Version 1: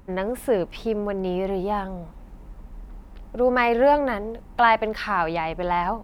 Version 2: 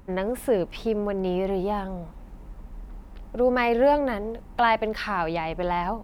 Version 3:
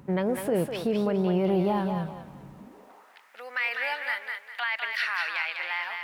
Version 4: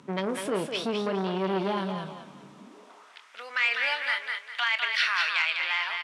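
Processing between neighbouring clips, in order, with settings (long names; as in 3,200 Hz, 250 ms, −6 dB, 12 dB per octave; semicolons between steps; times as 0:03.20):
dynamic equaliser 1,300 Hz, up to −5 dB, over −30 dBFS, Q 0.77
high-pass filter sweep 140 Hz → 1,900 Hz, 0:02.53–0:03.15; brickwall limiter −18 dBFS, peak gain reduction 9.5 dB; feedback echo with a high-pass in the loop 201 ms, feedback 34%, high-pass 640 Hz, level −4 dB
loudspeaker in its box 300–9,300 Hz, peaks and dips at 340 Hz −4 dB, 520 Hz −8 dB, 800 Hz −9 dB, 1,800 Hz −5 dB, 3,400 Hz +5 dB, 5,700 Hz +3 dB; double-tracking delay 26 ms −11 dB; saturating transformer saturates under 1,200 Hz; level +5 dB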